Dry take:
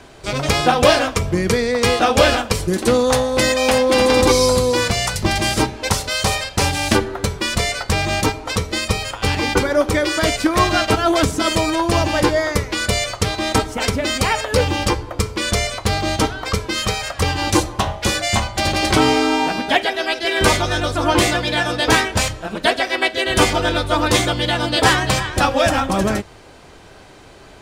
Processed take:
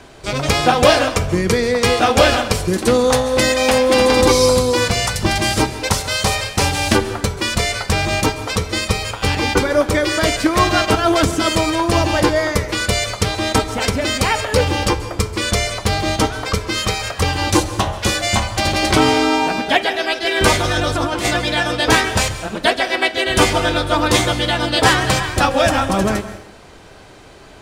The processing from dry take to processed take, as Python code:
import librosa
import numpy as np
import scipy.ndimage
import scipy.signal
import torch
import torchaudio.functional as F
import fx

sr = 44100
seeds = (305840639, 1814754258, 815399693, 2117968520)

y = fx.over_compress(x, sr, threshold_db=-20.0, ratio=-1.0, at=(20.61, 21.25))
y = fx.rev_plate(y, sr, seeds[0], rt60_s=0.81, hf_ratio=0.85, predelay_ms=120, drr_db=12.5)
y = y * librosa.db_to_amplitude(1.0)